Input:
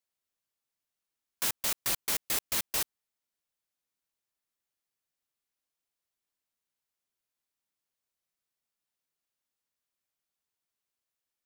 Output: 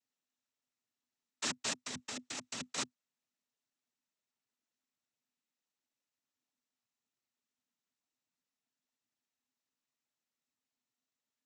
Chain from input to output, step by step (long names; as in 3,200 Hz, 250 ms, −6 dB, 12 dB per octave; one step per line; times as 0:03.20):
cochlear-implant simulation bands 12
parametric band 250 Hz +14 dB 0.24 octaves
0:01.85–0:02.78: compressor whose output falls as the input rises −40 dBFS, ratio −1
level −1.5 dB